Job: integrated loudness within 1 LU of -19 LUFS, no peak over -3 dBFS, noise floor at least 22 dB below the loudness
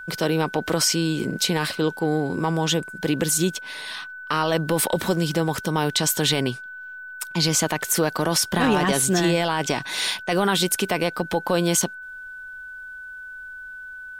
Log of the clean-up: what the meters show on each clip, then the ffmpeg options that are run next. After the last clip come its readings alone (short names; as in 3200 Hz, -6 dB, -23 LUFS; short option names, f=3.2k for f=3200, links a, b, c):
steady tone 1500 Hz; tone level -35 dBFS; loudness -22.5 LUFS; peak -9.0 dBFS; loudness target -19.0 LUFS
-> -af "bandreject=f=1.5k:w=30"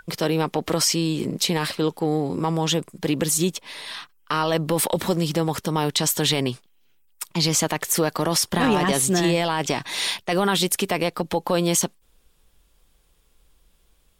steady tone none; loudness -22.5 LUFS; peak -9.0 dBFS; loudness target -19.0 LUFS
-> -af "volume=3.5dB"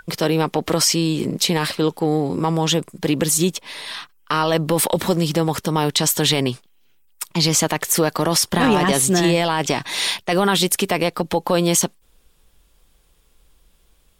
loudness -19.0 LUFS; peak -5.5 dBFS; noise floor -57 dBFS